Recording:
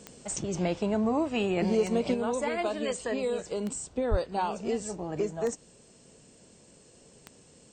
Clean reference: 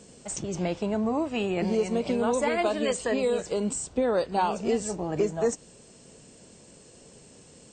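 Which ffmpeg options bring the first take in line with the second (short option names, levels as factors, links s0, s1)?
-filter_complex "[0:a]adeclick=t=4,asplit=3[s0][s1][s2];[s0]afade=t=out:st=4.1:d=0.02[s3];[s1]highpass=f=140:w=0.5412,highpass=f=140:w=1.3066,afade=t=in:st=4.1:d=0.02,afade=t=out:st=4.22:d=0.02[s4];[s2]afade=t=in:st=4.22:d=0.02[s5];[s3][s4][s5]amix=inputs=3:normalize=0,asetnsamples=n=441:p=0,asendcmd='2.14 volume volume 4.5dB',volume=1"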